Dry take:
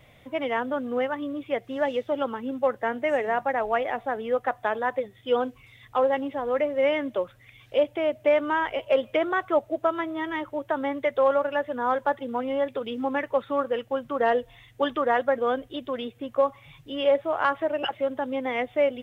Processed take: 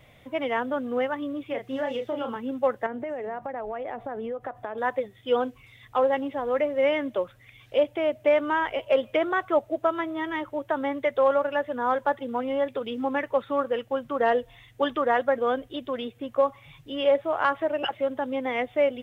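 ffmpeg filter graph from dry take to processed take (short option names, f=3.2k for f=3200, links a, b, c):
-filter_complex "[0:a]asettb=1/sr,asplit=3[a][b][c];[a]atrim=end=1.464[d];[b]atrim=start=1.46:end=2.36,asetpts=PTS-STARTPTS,afade=t=in:d=0.004:c=qsin,afade=t=out:st=0.896:d=0.004:c=qsin,acompressor=threshold=-26dB:ratio=4:attack=3.2:release=140:knee=1:detection=peak,asplit=2[e][f];[f]adelay=34,volume=-5dB[g];[e][g]amix=inputs=2:normalize=0,atrim=end_sample=39690[h];[c]atrim=start=2.356[i];[d][h]acrossfade=d=0.004:c1=hsin:c2=qsin[j];[j][i]acrossfade=d=0.004:c1=qsin:c2=hsin,asettb=1/sr,asplit=3[k][l][m];[k]atrim=end=2.864[n];[l]atrim=start=2.86:end=4.78,asetpts=PTS-STARTPTS,afade=t=in:d=0.004:c=qsin,afade=t=out:st=1.916:d=0.004:c=qsin,tiltshelf=f=1.4k:g=6,acompressor=threshold=-29dB:ratio=10:attack=3.2:release=140:knee=1:detection=peak[o];[m]atrim=start=4.776[p];[n][o]acrossfade=d=0.004:c1=hsin:c2=qsin[q];[q][p]acrossfade=d=0.004:c1=qsin:c2=hsin"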